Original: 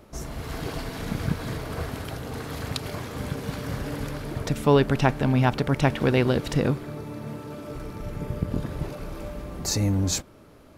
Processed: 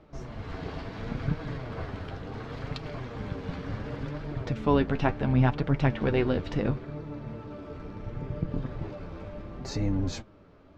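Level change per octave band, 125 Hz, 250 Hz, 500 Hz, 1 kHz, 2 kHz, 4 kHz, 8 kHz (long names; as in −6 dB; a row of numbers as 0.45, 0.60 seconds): −3.5 dB, −3.5 dB, −5.0 dB, −4.5 dB, −5.5 dB, −9.5 dB, below −15 dB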